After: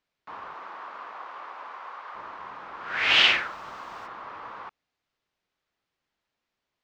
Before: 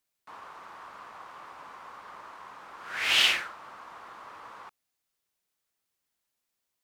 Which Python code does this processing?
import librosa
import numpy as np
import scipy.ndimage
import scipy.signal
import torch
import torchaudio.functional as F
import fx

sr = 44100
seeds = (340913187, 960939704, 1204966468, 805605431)

y = fx.highpass(x, sr, hz=fx.line((0.54, 250.0), (2.14, 570.0)), slope=12, at=(0.54, 2.14), fade=0.02)
y = fx.dmg_noise_colour(y, sr, seeds[0], colour='white', level_db=-51.0, at=(3.13, 4.06), fade=0.02)
y = fx.air_absorb(y, sr, metres=190.0)
y = F.gain(torch.from_numpy(y), 7.0).numpy()